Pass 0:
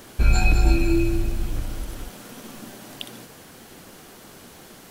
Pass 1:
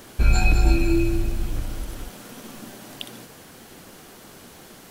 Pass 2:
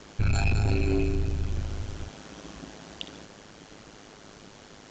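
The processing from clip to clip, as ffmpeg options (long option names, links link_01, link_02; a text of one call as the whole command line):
ffmpeg -i in.wav -af anull out.wav
ffmpeg -i in.wav -af "aresample=16000,asoftclip=type=tanh:threshold=-15.5dB,aresample=44100,aeval=exprs='val(0)*sin(2*PI*52*n/s)':channel_layout=same" out.wav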